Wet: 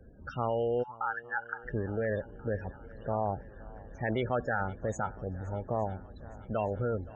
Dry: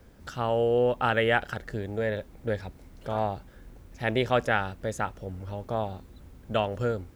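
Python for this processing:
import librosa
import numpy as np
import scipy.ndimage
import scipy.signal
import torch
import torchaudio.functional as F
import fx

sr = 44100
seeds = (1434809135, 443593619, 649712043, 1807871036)

p1 = fx.over_compress(x, sr, threshold_db=-30.0, ratio=-1.0)
p2 = x + (p1 * 10.0 ** (1.0 / 20.0))
p3 = fx.spec_topn(p2, sr, count=32)
p4 = fx.brickwall_bandpass(p3, sr, low_hz=770.0, high_hz=1800.0, at=(0.82, 1.63), fade=0.02)
p5 = fx.echo_swing(p4, sr, ms=865, ratio=1.5, feedback_pct=61, wet_db=-21.0)
y = p5 * 10.0 ** (-8.5 / 20.0)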